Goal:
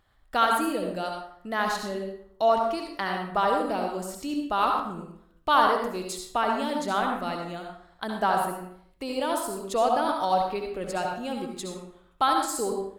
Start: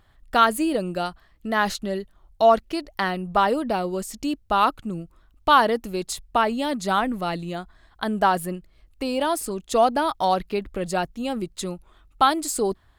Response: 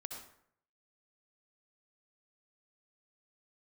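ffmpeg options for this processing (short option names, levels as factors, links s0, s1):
-filter_complex "[0:a]bass=f=250:g=-4,treble=f=4000:g=0[s0];[1:a]atrim=start_sample=2205[s1];[s0][s1]afir=irnorm=-1:irlink=0,volume=0.891"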